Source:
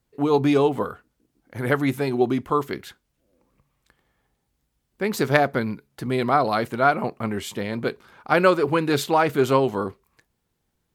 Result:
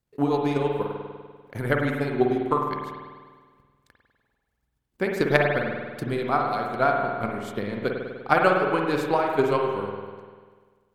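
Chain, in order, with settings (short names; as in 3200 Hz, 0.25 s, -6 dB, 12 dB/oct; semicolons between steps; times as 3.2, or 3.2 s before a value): transient shaper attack +11 dB, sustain -5 dB; spring tank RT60 1.6 s, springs 49 ms, chirp 60 ms, DRR 0.5 dB; gain -9.5 dB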